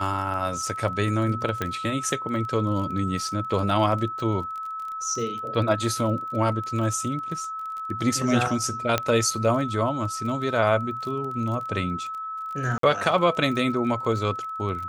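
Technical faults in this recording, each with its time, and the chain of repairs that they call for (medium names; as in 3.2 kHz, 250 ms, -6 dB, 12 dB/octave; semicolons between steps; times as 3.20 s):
crackle 25 per s -32 dBFS
whine 1.3 kHz -30 dBFS
1.62 s: pop -12 dBFS
8.98 s: pop -7 dBFS
12.78–12.83 s: dropout 53 ms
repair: de-click; band-stop 1.3 kHz, Q 30; interpolate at 12.78 s, 53 ms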